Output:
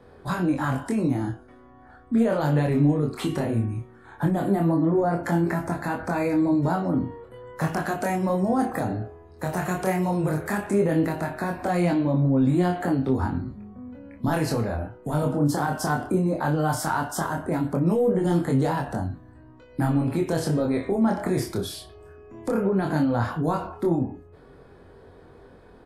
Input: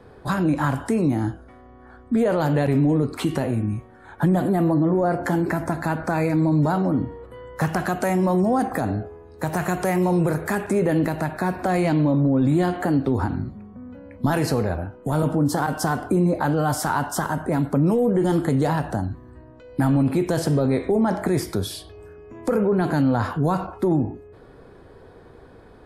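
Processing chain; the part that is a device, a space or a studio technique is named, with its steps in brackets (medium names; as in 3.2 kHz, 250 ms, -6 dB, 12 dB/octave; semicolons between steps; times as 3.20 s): double-tracked vocal (doubling 35 ms -12 dB; chorus 0.16 Hz, depth 4.5 ms)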